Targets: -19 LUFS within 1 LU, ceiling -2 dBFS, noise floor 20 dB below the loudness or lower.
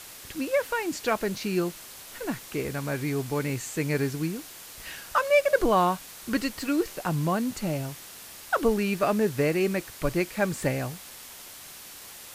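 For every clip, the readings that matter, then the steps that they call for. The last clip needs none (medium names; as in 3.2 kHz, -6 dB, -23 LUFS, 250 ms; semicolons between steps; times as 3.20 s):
noise floor -45 dBFS; noise floor target -48 dBFS; loudness -27.5 LUFS; peak level -9.5 dBFS; loudness target -19.0 LUFS
-> noise print and reduce 6 dB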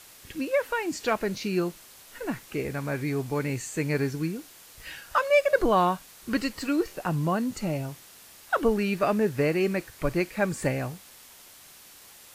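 noise floor -51 dBFS; loudness -27.5 LUFS; peak level -9.5 dBFS; loudness target -19.0 LUFS
-> trim +8.5 dB; peak limiter -2 dBFS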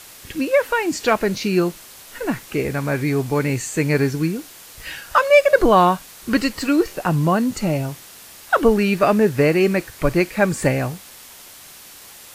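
loudness -19.0 LUFS; peak level -2.0 dBFS; noise floor -42 dBFS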